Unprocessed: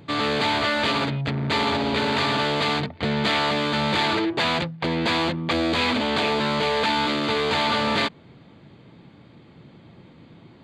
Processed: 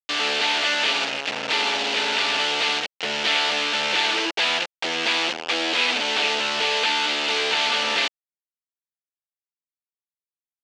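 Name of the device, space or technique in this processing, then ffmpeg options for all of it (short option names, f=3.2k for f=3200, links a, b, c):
hand-held game console: -af "acrusher=bits=3:mix=0:aa=0.000001,highpass=500,equalizer=f=600:t=q:w=4:g=-3,equalizer=f=1.1k:t=q:w=4:g=-7,equalizer=f=2.8k:t=q:w=4:g=8,lowpass=f=5.9k:w=0.5412,lowpass=f=5.9k:w=1.3066"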